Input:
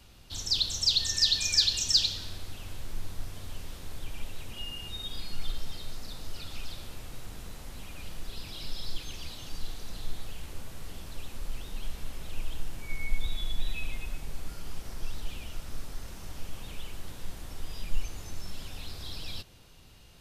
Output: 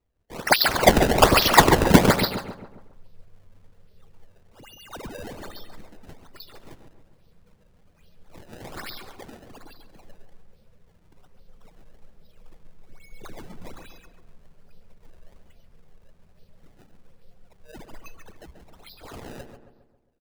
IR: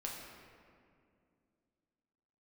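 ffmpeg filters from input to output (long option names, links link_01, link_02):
-filter_complex "[0:a]asplit=2[link_01][link_02];[link_02]adelay=13,volume=-13dB[link_03];[link_01][link_03]amix=inputs=2:normalize=0,asplit=2[link_04][link_05];[link_05]aecho=0:1:145|290|435|580:0.447|0.156|0.0547|0.0192[link_06];[link_04][link_06]amix=inputs=2:normalize=0,afftdn=noise_reduction=27:noise_floor=-41,firequalizer=gain_entry='entry(110,0);entry(180,5);entry(300,-17);entry(450,4);entry(1300,-11);entry(2100,-15);entry(4700,12);entry(7000,-2);entry(11000,3)':delay=0.05:min_phase=1,crystalizer=i=4.5:c=0,bass=frequency=250:gain=-12,treble=frequency=4000:gain=-6,acrusher=samples=23:mix=1:aa=0.000001:lfo=1:lforange=36.8:lforate=1.2,asplit=2[link_07][link_08];[link_08]adelay=135,lowpass=frequency=1800:poles=1,volume=-8dB,asplit=2[link_09][link_10];[link_10]adelay=135,lowpass=frequency=1800:poles=1,volume=0.52,asplit=2[link_11][link_12];[link_12]adelay=135,lowpass=frequency=1800:poles=1,volume=0.52,asplit=2[link_13][link_14];[link_14]adelay=135,lowpass=frequency=1800:poles=1,volume=0.52,asplit=2[link_15][link_16];[link_16]adelay=135,lowpass=frequency=1800:poles=1,volume=0.52,asplit=2[link_17][link_18];[link_18]adelay=135,lowpass=frequency=1800:poles=1,volume=0.52[link_19];[link_09][link_11][link_13][link_15][link_17][link_19]amix=inputs=6:normalize=0[link_20];[link_07][link_20]amix=inputs=2:normalize=0,volume=-6dB"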